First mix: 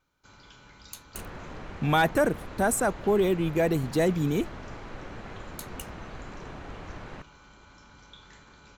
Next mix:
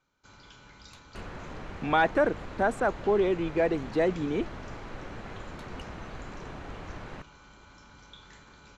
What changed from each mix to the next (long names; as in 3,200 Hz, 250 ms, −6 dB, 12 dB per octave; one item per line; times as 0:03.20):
speech: add band-pass filter 270–2,800 Hz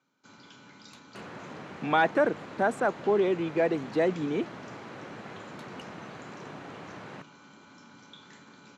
first sound: add parametric band 250 Hz +7.5 dB 0.72 octaves
master: add high-pass filter 130 Hz 24 dB per octave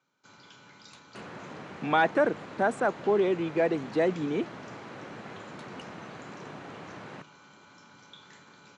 first sound: add parametric band 250 Hz −7.5 dB 0.72 octaves
master: add linear-phase brick-wall low-pass 11,000 Hz